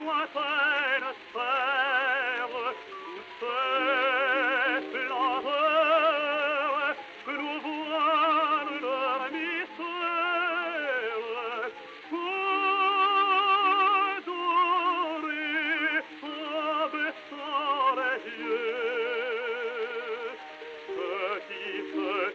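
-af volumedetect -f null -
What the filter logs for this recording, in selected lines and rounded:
mean_volume: -28.4 dB
max_volume: -14.6 dB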